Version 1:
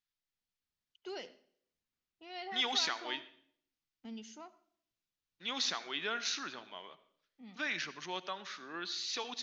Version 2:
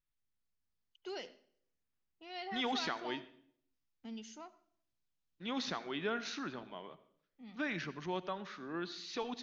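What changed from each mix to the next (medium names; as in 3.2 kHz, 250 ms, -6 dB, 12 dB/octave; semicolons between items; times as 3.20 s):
second voice: add tilt EQ -4 dB/octave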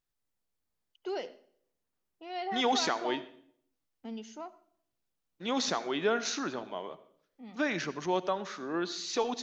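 second voice: remove distance through air 210 m; master: add peaking EQ 570 Hz +10 dB 2.5 oct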